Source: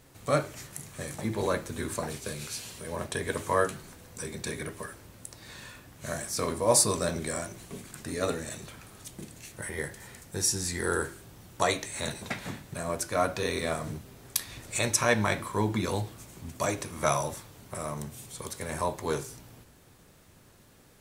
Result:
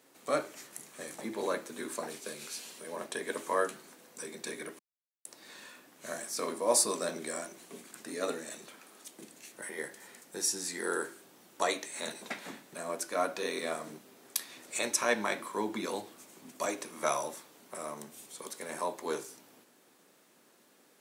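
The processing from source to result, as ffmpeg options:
-filter_complex "[0:a]asettb=1/sr,asplit=3[s0][s1][s2];[s0]atrim=end=8.764[s3];[s1]atrim=start=8.76:end=9.2,asetpts=PTS-STARTPTS,afade=t=in:d=0.004:c=qsin,afade=t=out:st=0.436:d=0.004:c=qsin,highpass=190[s4];[s2]atrim=start=9.196[s5];[s3][s4]acrossfade=d=0.004:c1=hsin:c2=qsin[s6];[s6][s5]acrossfade=d=0.004:c1=qsin:c2=hsin,asplit=3[s7][s8][s9];[s7]atrim=end=4.79,asetpts=PTS-STARTPTS,afade=t=out:st=4.786:d=0.004:c=hsin[s10];[s8]atrim=start=4.79:end=5.25,asetpts=PTS-STARTPTS,volume=0[s11];[s9]atrim=start=5.25,asetpts=PTS-STARTPTS,afade=t=in:d=0.004:c=hsin[s12];[s10][s11][s12]concat=n=3:v=0:a=1,highpass=f=230:w=0.5412,highpass=f=230:w=1.3066,volume=0.631"

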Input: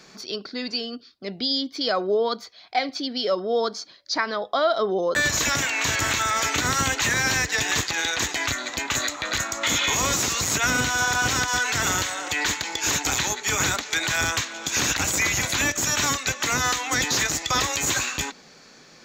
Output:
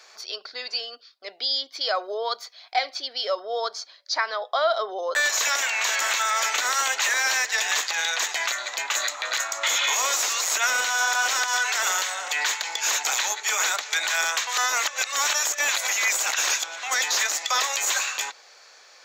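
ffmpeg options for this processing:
-filter_complex "[0:a]asettb=1/sr,asplit=3[s0][s1][s2];[s0]atrim=end=2.044[s3];[s1]atrim=start=2.04:end=2.9,asetpts=PTS-STARTPTS,afade=t=in:d=0.004:c=qsin,afade=t=out:st=0.856:d=0.004:c=qsin,highshelf=f=6400:g=5.5[s4];[s2]atrim=start=2.896[s5];[s3][s4]acrossfade=d=0.004:c1=hsin:c2=qsin[s6];[s6][s5]acrossfade=d=0.004:c1=qsin:c2=hsin,asplit=3[s7][s8][s9];[s7]atrim=end=14.472[s10];[s8]atrim=start=14.468:end=16.832,asetpts=PTS-STARTPTS,areverse[s11];[s9]atrim=start=16.828[s12];[s10][s11]acrossfade=d=0.004:c1=hsin:c2=hsin[s13];[s13][s12]acrossfade=d=0.004:c1=hsin:c2=hsin,highpass=f=560:w=0.5412,highpass=f=560:w=1.3066"

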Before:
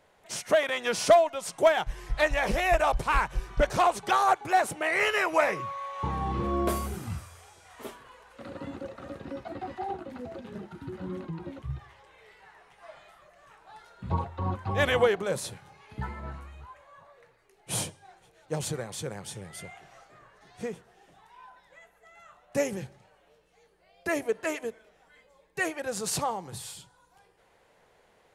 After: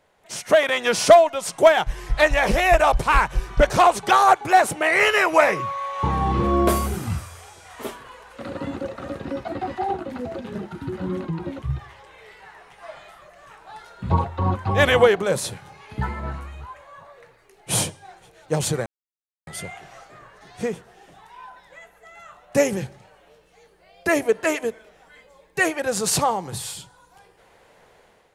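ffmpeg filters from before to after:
-filter_complex "[0:a]asplit=3[s0][s1][s2];[s0]atrim=end=18.86,asetpts=PTS-STARTPTS,afade=t=out:st=18.856:d=0.004:c=hsin[s3];[s1]atrim=start=18.86:end=19.47,asetpts=PTS-STARTPTS,volume=0[s4];[s2]atrim=start=19.47,asetpts=PTS-STARTPTS,afade=t=in:d=0.004:c=hsin[s5];[s3][s4][s5]concat=n=3:v=0:a=1,dynaudnorm=f=180:g=5:m=2.82"

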